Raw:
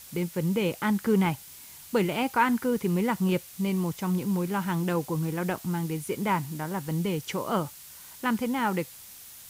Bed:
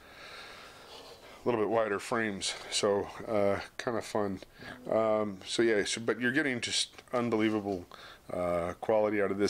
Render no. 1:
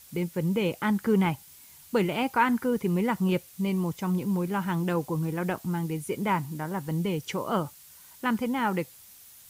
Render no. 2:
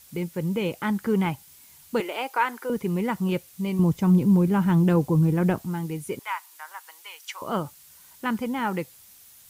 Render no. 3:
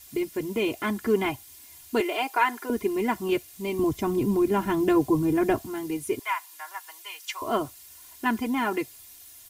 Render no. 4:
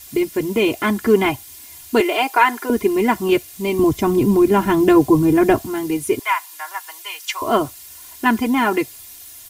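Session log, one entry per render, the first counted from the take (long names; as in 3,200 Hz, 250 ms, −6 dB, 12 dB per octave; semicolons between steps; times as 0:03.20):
broadband denoise 6 dB, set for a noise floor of −47 dBFS
0:02.00–0:02.70: high-pass filter 380 Hz 24 dB per octave; 0:03.79–0:05.63: low-shelf EQ 390 Hz +11.5 dB; 0:06.19–0:07.42: high-pass filter 980 Hz 24 dB per octave
parametric band 1,300 Hz −3.5 dB 0.37 octaves; comb filter 2.9 ms, depth 98%
level +9 dB; brickwall limiter −2 dBFS, peak gain reduction 1 dB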